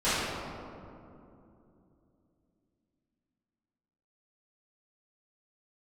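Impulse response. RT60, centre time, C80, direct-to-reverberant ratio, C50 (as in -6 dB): 2.8 s, 0.163 s, -1.5 dB, -17.0 dB, -4.5 dB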